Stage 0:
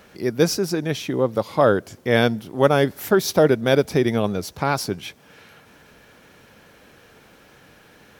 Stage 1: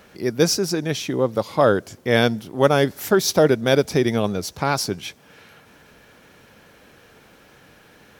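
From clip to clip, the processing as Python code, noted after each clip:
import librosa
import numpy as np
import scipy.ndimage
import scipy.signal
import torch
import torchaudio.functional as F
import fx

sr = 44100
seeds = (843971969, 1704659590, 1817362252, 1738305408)

y = fx.dynamic_eq(x, sr, hz=6200.0, q=0.85, threshold_db=-43.0, ratio=4.0, max_db=5)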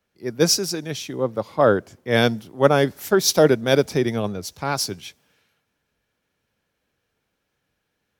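y = fx.band_widen(x, sr, depth_pct=70)
y = y * 10.0 ** (-2.5 / 20.0)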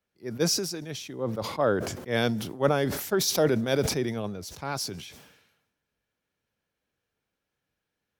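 y = fx.sustainer(x, sr, db_per_s=58.0)
y = y * 10.0 ** (-8.5 / 20.0)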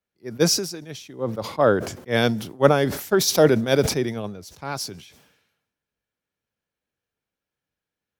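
y = fx.upward_expand(x, sr, threshold_db=-44.0, expansion=1.5)
y = y * 10.0 ** (8.5 / 20.0)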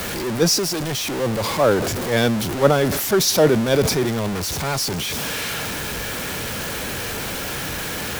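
y = x + 0.5 * 10.0 ** (-19.0 / 20.0) * np.sign(x)
y = y * 10.0 ** (-1.0 / 20.0)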